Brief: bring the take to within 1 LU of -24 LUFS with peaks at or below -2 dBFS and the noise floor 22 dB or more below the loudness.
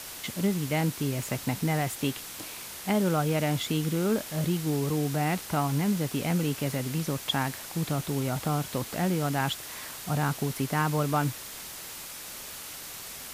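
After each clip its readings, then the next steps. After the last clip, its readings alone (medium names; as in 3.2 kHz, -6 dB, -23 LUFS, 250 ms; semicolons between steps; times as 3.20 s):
noise floor -41 dBFS; noise floor target -52 dBFS; loudness -29.5 LUFS; peak level -13.0 dBFS; loudness target -24.0 LUFS
-> noise reduction 11 dB, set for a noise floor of -41 dBFS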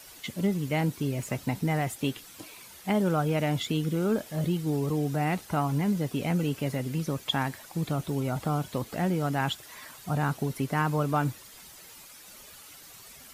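noise floor -49 dBFS; noise floor target -52 dBFS
-> noise reduction 6 dB, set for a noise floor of -49 dBFS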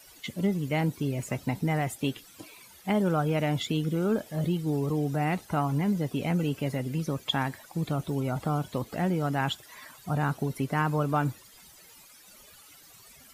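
noise floor -54 dBFS; loudness -29.5 LUFS; peak level -13.5 dBFS; loudness target -24.0 LUFS
-> trim +5.5 dB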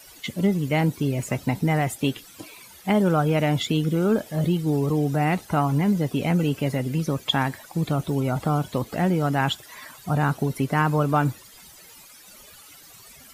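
loudness -24.0 LUFS; peak level -8.0 dBFS; noise floor -48 dBFS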